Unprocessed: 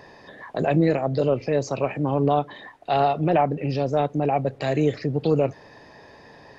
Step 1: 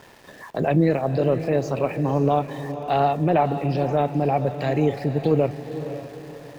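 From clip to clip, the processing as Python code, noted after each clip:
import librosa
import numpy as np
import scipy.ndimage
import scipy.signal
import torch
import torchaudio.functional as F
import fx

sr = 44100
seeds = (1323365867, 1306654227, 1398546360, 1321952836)

y = fx.bass_treble(x, sr, bass_db=2, treble_db=-6)
y = np.where(np.abs(y) >= 10.0 ** (-45.5 / 20.0), y, 0.0)
y = fx.echo_diffused(y, sr, ms=520, feedback_pct=41, wet_db=-10.5)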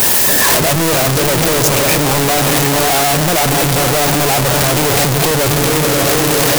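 y = np.sign(x) * np.sqrt(np.mean(np.square(x)))
y = fx.high_shelf(y, sr, hz=5300.0, db=11.0)
y = y * 10.0 ** (8.5 / 20.0)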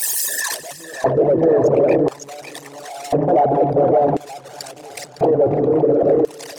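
y = fx.envelope_sharpen(x, sr, power=3.0)
y = fx.echo_filtered(y, sr, ms=558, feedback_pct=39, hz=3000.0, wet_db=-7)
y = fx.filter_lfo_bandpass(y, sr, shape='square', hz=0.48, low_hz=530.0, high_hz=6900.0, q=0.99)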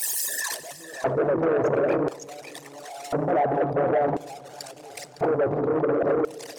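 y = fx.rev_plate(x, sr, seeds[0], rt60_s=1.7, hf_ratio=0.65, predelay_ms=0, drr_db=19.0)
y = fx.transformer_sat(y, sr, knee_hz=700.0)
y = y * 10.0 ** (-6.5 / 20.0)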